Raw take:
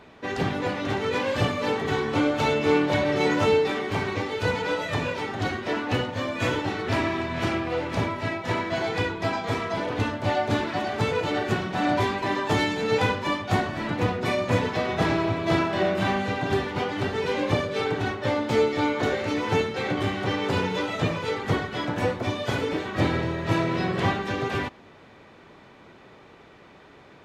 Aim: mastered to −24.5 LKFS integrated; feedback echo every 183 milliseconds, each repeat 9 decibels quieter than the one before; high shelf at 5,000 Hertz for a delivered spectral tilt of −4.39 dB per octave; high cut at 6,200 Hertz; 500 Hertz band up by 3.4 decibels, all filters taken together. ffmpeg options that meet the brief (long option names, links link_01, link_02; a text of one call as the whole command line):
ffmpeg -i in.wav -af "lowpass=6200,equalizer=frequency=500:width_type=o:gain=4,highshelf=frequency=5000:gain=4.5,aecho=1:1:183|366|549|732:0.355|0.124|0.0435|0.0152,volume=-1dB" out.wav